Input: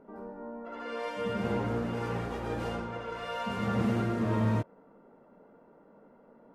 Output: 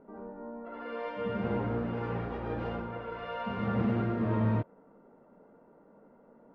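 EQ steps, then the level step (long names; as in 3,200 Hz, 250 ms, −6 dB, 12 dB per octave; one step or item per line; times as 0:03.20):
high-frequency loss of the air 330 metres
0.0 dB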